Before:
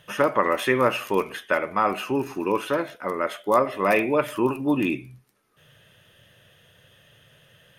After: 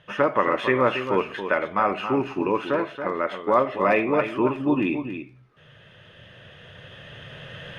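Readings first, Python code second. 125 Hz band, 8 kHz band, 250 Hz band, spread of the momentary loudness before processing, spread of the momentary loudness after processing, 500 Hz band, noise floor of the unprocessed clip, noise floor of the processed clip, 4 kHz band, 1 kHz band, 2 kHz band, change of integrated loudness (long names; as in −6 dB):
+1.0 dB, below −10 dB, +1.0 dB, 6 LU, 18 LU, +0.5 dB, −58 dBFS, −52 dBFS, −1.5 dB, +0.5 dB, 0.0 dB, +0.5 dB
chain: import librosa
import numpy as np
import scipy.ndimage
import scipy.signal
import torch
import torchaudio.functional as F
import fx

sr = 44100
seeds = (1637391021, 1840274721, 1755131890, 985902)

y = fx.recorder_agc(x, sr, target_db=-14.5, rise_db_per_s=6.3, max_gain_db=30)
y = scipy.signal.sosfilt(scipy.signal.butter(2, 3200.0, 'lowpass', fs=sr, output='sos'), y)
y = y + 10.0 ** (-9.0 / 20.0) * np.pad(y, (int(277 * sr / 1000.0), 0))[:len(y)]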